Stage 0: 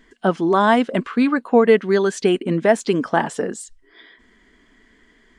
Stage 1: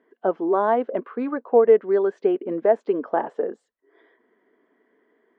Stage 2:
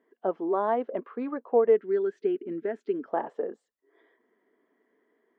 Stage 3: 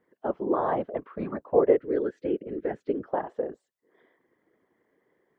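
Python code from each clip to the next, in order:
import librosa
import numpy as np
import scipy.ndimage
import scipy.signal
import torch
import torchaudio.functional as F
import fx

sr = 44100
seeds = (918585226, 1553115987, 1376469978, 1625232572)

y1 = fx.ladder_bandpass(x, sr, hz=570.0, resonance_pct=30)
y1 = F.gain(torch.from_numpy(y1), 8.0).numpy()
y2 = fx.notch(y1, sr, hz=1500.0, q=20.0)
y2 = fx.spec_box(y2, sr, start_s=1.76, length_s=1.32, low_hz=440.0, high_hz=1300.0, gain_db=-13)
y2 = F.gain(torch.from_numpy(y2), -6.0).numpy()
y3 = fx.whisperise(y2, sr, seeds[0])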